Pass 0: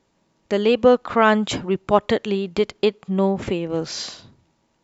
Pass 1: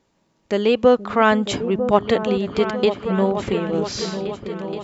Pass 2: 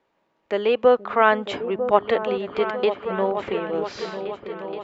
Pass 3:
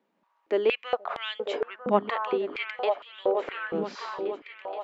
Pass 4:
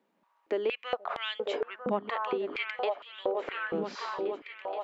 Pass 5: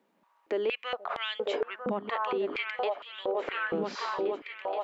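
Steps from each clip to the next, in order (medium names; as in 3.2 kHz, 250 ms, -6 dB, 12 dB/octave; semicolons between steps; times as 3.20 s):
delay with an opening low-pass 474 ms, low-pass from 200 Hz, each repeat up 2 oct, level -6 dB
three-band isolator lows -14 dB, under 360 Hz, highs -19 dB, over 3.3 kHz
step-sequenced high-pass 4.3 Hz 210–3300 Hz; trim -6.5 dB
compression 3:1, threshold -28 dBFS, peak gain reduction 10 dB
peak limiter -24.5 dBFS, peak gain reduction 8 dB; trim +3 dB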